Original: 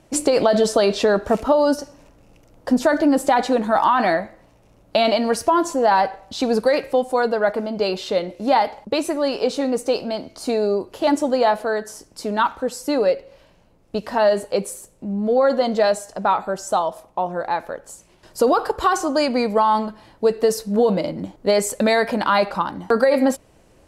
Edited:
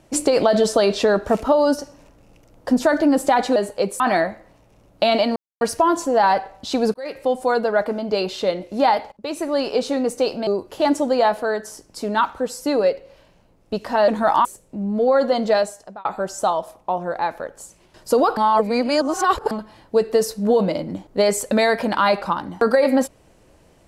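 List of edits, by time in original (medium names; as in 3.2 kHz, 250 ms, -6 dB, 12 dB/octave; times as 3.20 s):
3.56–3.93 s: swap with 14.30–14.74 s
5.29 s: insert silence 0.25 s
6.62–7.04 s: fade in
8.80–9.21 s: fade in, from -20 dB
10.15–10.69 s: delete
15.83–16.34 s: fade out linear
18.66–19.80 s: reverse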